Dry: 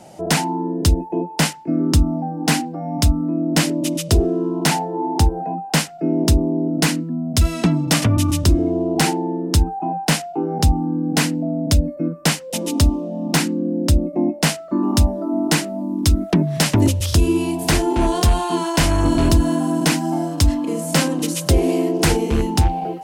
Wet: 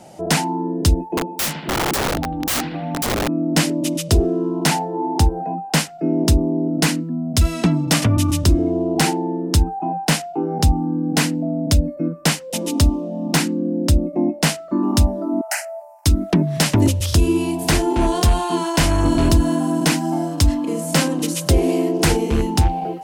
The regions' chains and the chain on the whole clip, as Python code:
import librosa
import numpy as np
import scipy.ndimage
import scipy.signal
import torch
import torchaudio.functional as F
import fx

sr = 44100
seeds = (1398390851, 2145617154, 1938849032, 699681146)

y = fx.chain(x, sr, fx.echo_bbd(ms=78, stages=2048, feedback_pct=66, wet_db=-12.0),
    fx.overflow_wrap(gain_db=15.5), at=(1.17, 3.28))
y = fx.chain(y, sr, fx.brickwall_highpass(low_hz=550.0),
    fx.fixed_phaser(hz=720.0, stages=8), at=(15.41, 16.06))